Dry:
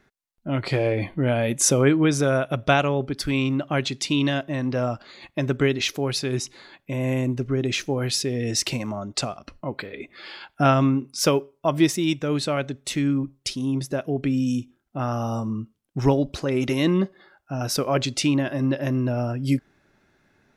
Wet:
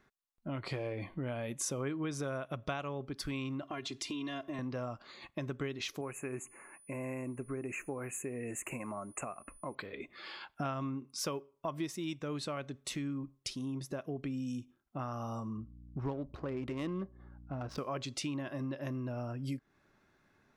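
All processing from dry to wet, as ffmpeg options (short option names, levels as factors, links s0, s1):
-filter_complex "[0:a]asettb=1/sr,asplit=3[s0][s1][s2];[s0]atrim=end=3.624[s3];[s1]atrim=start=3.62:end=4.59,asetpts=PTS-STARTPTS,afade=t=in:d=0.004:c=qsin,afade=t=out:st=0.966:d=0.004:c=qsin,aecho=1:1:2.9:0.95,atrim=end_sample=42777,acompressor=threshold=0.0501:ratio=3:attack=3.2:release=140:knee=1:detection=peak[s4];[s2]atrim=start=4.586[s5];[s3][s4]acrossfade=d=0.004:c1=hsin:c2=qsin[s6];[s6][s5]acrossfade=d=0.004:c1=qsin:c2=hsin,asettb=1/sr,asplit=3[s7][s8][s9];[s7]atrim=end=6.014[s10];[s8]atrim=start=6.01:end=9.75,asetpts=PTS-STARTPTS,afade=t=in:d=0.004:c=qsin,afade=t=out:st=3.736:d=0.004:c=qsin,asuperstop=centerf=4300:order=20:qfactor=1.1,equalizer=f=99:t=o:w=1.9:g=-8,aeval=exprs='val(0)+0.00282*sin(2*PI*9900*n/s)':c=same[s11];[s9]atrim=start=9.746[s12];[s10][s11]acrossfade=d=0.004:c1=hsin:c2=qsin[s13];[s13][s12]acrossfade=d=0.004:c1=qsin:c2=hsin,asettb=1/sr,asplit=3[s14][s15][s16];[s14]atrim=end=15.574[s17];[s15]atrim=start=15.57:end=17.78,asetpts=PTS-STARTPTS,afade=t=in:d=0.004:c=qsin,afade=t=out:st=2.206:d=0.004:c=qsin,adynamicsmooth=sensitivity=1.5:basefreq=1200,aeval=exprs='val(0)+0.00631*(sin(2*PI*60*n/s)+sin(2*PI*2*60*n/s)/2+sin(2*PI*3*60*n/s)/3+sin(2*PI*4*60*n/s)/4+sin(2*PI*5*60*n/s)/5)':c=same[s18];[s16]atrim=start=17.776[s19];[s17][s18]acrossfade=d=0.004:c1=hsin:c2=qsin[s20];[s20][s19]acrossfade=d=0.004:c1=qsin:c2=hsin,equalizer=f=1100:t=o:w=0.33:g=7,acompressor=threshold=0.0316:ratio=3,volume=0.422"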